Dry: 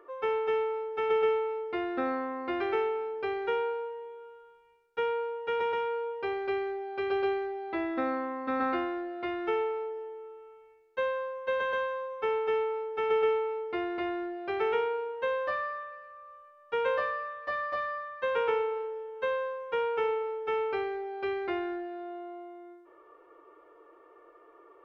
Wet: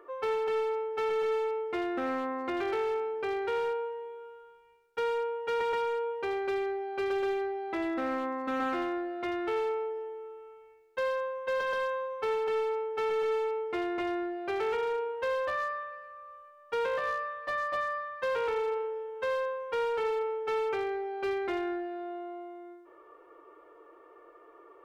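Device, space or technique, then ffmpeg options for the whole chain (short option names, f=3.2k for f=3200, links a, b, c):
limiter into clipper: -af "alimiter=limit=-24dB:level=0:latency=1:release=100,asoftclip=type=hard:threshold=-28dB,volume=1.5dB"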